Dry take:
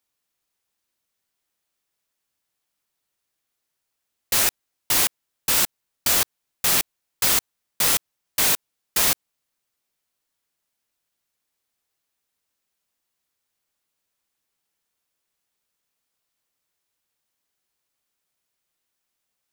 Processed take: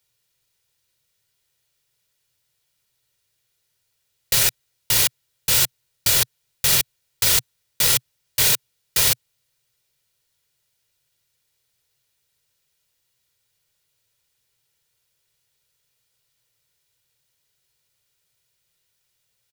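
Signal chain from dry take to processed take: graphic EQ 125/250/1000/4000 Hz +12/-8/-6/+3 dB; peak limiter -14 dBFS, peak gain reduction 7.5 dB; comb 2.1 ms, depth 34%; trim +6.5 dB

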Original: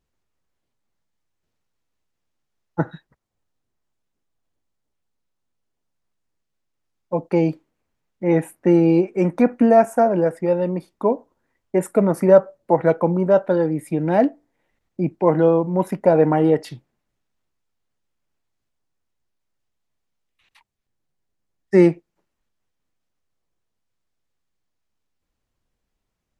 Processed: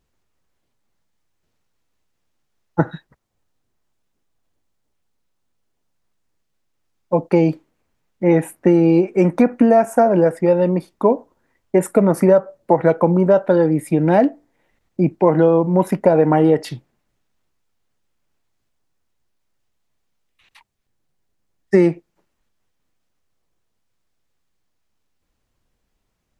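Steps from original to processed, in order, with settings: compression 6:1, threshold -15 dBFS, peak gain reduction 9 dB; trim +6 dB

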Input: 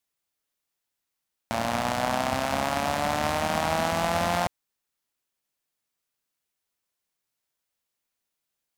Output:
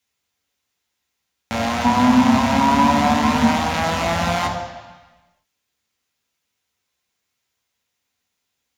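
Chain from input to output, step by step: peak limiter -15.5 dBFS, peak gain reduction 6 dB; 1.84–3.51 s: small resonant body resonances 240/970 Hz, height 17 dB, ringing for 95 ms; reverberation RT60 1.2 s, pre-delay 3 ms, DRR 0.5 dB; trim +1.5 dB

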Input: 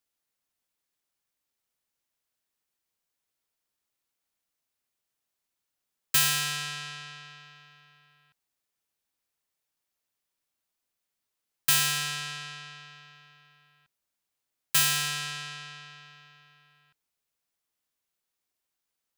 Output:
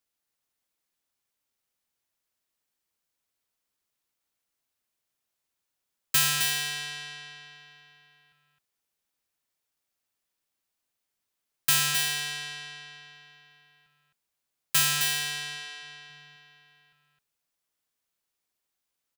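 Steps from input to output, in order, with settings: 15.54–16.10 s: hum notches 50/100/150 Hz; on a send: delay 263 ms -6 dB

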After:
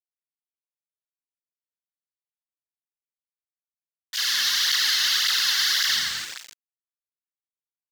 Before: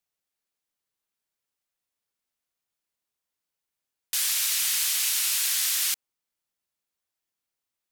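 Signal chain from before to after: peak limiter -20.5 dBFS, peak gain reduction 7.5 dB; high-pass 76 Hz 24 dB/octave, from 4.46 s 590 Hz, from 5.84 s 67 Hz; tilt shelf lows +8.5 dB, about 1.4 kHz; static phaser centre 2.4 kHz, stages 6; feedback delay 588 ms, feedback 39%, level -18 dB; reverberation RT60 2.8 s, pre-delay 4 ms, DRR -14.5 dB; bit crusher 6-bit; high-order bell 3.6 kHz +12 dB 2.6 oct; cancelling through-zero flanger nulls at 1.8 Hz, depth 3.3 ms

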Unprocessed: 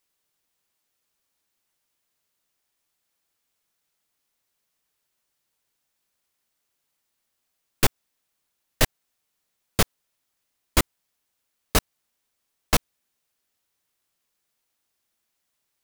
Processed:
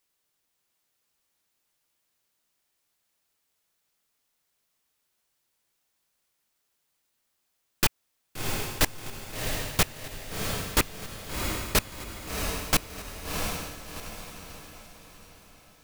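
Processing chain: rattle on loud lows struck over -27 dBFS, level -16 dBFS; echo that smears into a reverb 709 ms, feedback 43%, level -6 dB; wavefolder -13.5 dBFS

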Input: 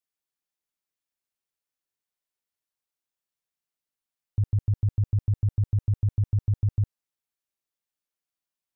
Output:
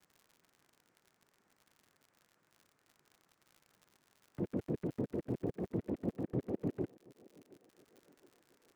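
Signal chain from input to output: upward compressor, threshold -36 dBFS; band-pass filter 320 Hz, Q 1.4; noise-vocoded speech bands 3; crackle 90 per s -51 dBFS; thinning echo 721 ms, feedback 67%, high-pass 290 Hz, level -21 dB; trim +1 dB

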